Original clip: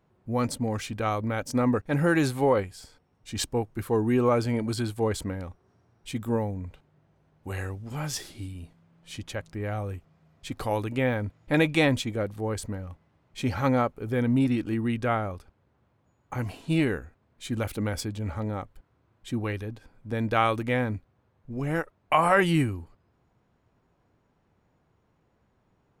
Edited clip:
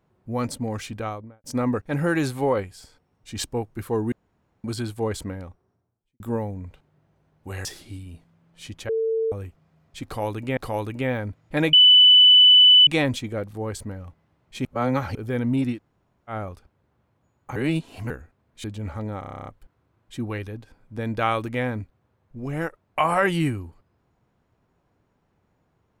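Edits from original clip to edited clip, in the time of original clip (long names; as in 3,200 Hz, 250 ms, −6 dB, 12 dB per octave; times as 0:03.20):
0:00.90–0:01.44: fade out and dull
0:04.12–0:04.64: fill with room tone
0:05.24–0:06.20: fade out and dull
0:07.65–0:08.14: remove
0:09.38–0:09.81: beep over 448 Hz −20.5 dBFS
0:10.54–0:11.06: repeat, 2 plays
0:11.70: insert tone 2,990 Hz −9 dBFS 1.14 s
0:13.48–0:13.98: reverse
0:14.58–0:15.15: fill with room tone, crossfade 0.10 s
0:16.39–0:16.93: reverse
0:17.47–0:18.05: remove
0:18.61: stutter 0.03 s, 10 plays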